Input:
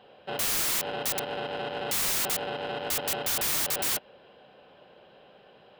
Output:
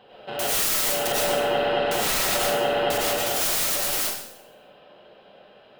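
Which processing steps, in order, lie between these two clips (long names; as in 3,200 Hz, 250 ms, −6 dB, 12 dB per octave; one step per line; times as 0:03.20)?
0:01.07–0:03.19: high-shelf EQ 4,300 Hz −7.5 dB
speech leveller within 4 dB 0.5 s
convolution reverb RT60 0.75 s, pre-delay 60 ms, DRR −6 dB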